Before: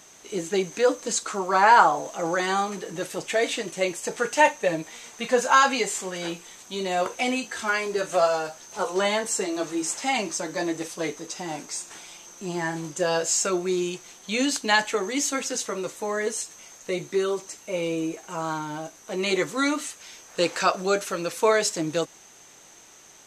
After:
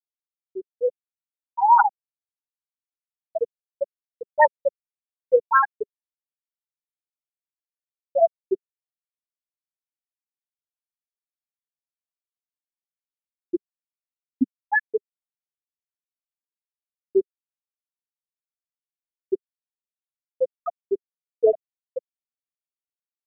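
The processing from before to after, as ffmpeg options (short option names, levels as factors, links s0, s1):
-filter_complex "[0:a]asplit=3[s0][s1][s2];[s0]atrim=end=8.292[s3];[s1]atrim=start=8.288:end=9.222,asetpts=PTS-STARTPTS,areverse[s4];[s2]atrim=start=9.218[s5];[s3][s4]acrossfade=d=0.004:c1=hsin:c2=hsin[s6];[s6][s5]acrossfade=d=0.004:c1=hsin:c2=hsin,afftfilt=real='re*gte(hypot(re,im),1)':imag='im*gte(hypot(re,im),1)':win_size=1024:overlap=0.75,firequalizer=gain_entry='entry(200,0);entry(400,-7);entry(1100,-11);entry(2200,-4)':delay=0.05:min_phase=1,dynaudnorm=f=210:g=11:m=5.01"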